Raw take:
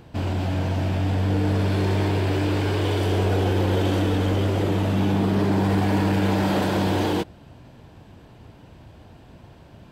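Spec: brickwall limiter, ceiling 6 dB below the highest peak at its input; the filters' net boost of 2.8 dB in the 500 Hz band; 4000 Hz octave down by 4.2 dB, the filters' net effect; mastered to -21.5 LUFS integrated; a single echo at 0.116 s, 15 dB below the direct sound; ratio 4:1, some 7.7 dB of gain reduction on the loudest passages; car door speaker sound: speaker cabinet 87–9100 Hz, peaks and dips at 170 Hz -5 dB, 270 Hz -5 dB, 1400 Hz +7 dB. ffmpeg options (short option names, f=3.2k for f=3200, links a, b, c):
-af "equalizer=f=500:t=o:g=4,equalizer=f=4k:t=o:g=-6,acompressor=threshold=-26dB:ratio=4,alimiter=level_in=0.5dB:limit=-24dB:level=0:latency=1,volume=-0.5dB,highpass=87,equalizer=f=170:t=q:w=4:g=-5,equalizer=f=270:t=q:w=4:g=-5,equalizer=f=1.4k:t=q:w=4:g=7,lowpass=f=9.1k:w=0.5412,lowpass=f=9.1k:w=1.3066,aecho=1:1:116:0.178,volume=12dB"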